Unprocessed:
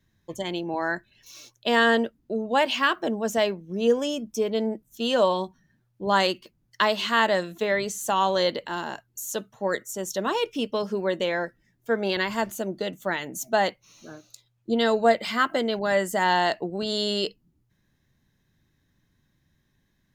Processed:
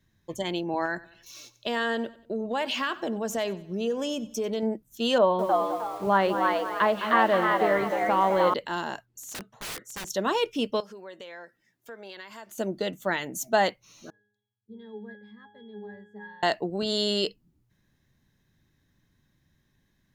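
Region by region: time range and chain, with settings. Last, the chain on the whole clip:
0.85–4.63 compressor 3:1, threshold -26 dBFS + feedback echo 93 ms, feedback 44%, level -19 dB
5.18–8.54 LPF 1700 Hz + frequency-shifting echo 0.309 s, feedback 30%, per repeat +120 Hz, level -3 dB + lo-fi delay 0.209 s, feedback 35%, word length 7-bit, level -9.5 dB
9.05–10.1 LPF 3500 Hz 6 dB/oct + low shelf 190 Hz -3.5 dB + wrapped overs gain 31 dB
10.8–12.58 HPF 540 Hz 6 dB/oct + compressor 3:1, threshold -44 dBFS
14.1–16.43 bell 1600 Hz +3.5 dB 1.2 oct + octave resonator G#, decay 0.62 s
whole clip: dry

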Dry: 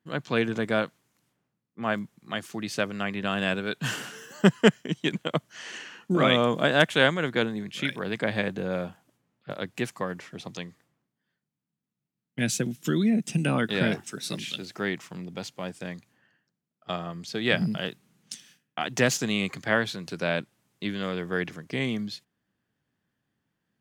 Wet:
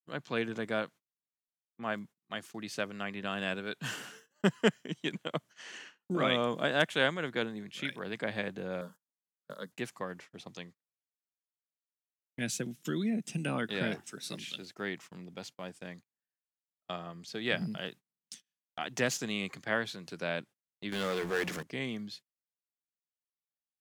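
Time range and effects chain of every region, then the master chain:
8.81–9.72 high shelf 4800 Hz +11 dB + fixed phaser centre 490 Hz, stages 8
20.92–21.63 tone controls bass -8 dB, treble +1 dB + notches 60/120/180/240/300 Hz + power-law curve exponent 0.5
whole clip: gate -42 dBFS, range -29 dB; low shelf 150 Hz -6 dB; gain -7 dB

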